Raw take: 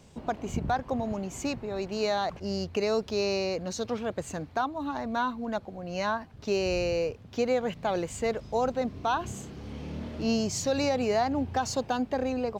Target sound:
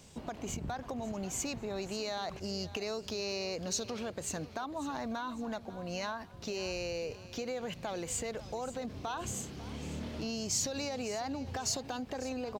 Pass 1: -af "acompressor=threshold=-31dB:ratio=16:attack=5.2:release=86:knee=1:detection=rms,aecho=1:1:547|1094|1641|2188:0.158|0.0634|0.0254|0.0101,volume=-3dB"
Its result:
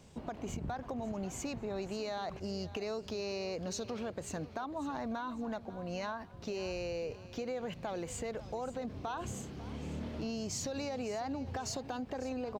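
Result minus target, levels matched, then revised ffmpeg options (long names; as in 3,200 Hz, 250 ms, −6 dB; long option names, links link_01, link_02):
4,000 Hz band −4.0 dB
-af "acompressor=threshold=-31dB:ratio=16:attack=5.2:release=86:knee=1:detection=rms,highshelf=frequency=2800:gain=9,aecho=1:1:547|1094|1641|2188:0.158|0.0634|0.0254|0.0101,volume=-3dB"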